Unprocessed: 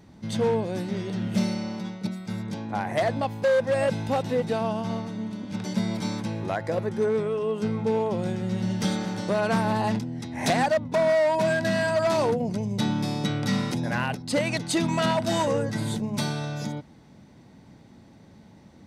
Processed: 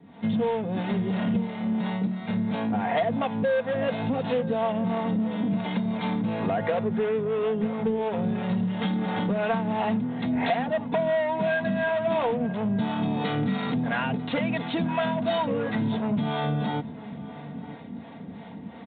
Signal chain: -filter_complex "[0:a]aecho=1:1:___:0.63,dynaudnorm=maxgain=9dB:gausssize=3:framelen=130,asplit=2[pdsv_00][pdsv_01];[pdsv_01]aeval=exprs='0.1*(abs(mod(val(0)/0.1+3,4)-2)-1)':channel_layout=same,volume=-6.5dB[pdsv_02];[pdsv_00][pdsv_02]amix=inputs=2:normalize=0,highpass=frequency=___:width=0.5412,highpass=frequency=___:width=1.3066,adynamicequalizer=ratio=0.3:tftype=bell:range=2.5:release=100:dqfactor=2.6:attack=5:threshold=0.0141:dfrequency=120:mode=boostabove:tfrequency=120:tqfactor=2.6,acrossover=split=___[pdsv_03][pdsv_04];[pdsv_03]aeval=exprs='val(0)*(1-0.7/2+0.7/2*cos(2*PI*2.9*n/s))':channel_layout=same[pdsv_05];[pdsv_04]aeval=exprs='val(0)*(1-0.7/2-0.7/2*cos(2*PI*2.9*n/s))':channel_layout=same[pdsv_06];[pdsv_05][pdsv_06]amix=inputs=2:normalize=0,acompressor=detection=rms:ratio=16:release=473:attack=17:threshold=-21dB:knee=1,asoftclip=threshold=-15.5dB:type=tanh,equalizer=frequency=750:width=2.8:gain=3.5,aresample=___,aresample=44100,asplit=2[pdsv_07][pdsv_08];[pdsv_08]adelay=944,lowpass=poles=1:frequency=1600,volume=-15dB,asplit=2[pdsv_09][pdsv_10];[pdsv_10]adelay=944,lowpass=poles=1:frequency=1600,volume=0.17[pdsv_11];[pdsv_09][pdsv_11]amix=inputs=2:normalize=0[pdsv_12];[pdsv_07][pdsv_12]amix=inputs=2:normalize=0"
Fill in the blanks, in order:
4.3, 88, 88, 440, 8000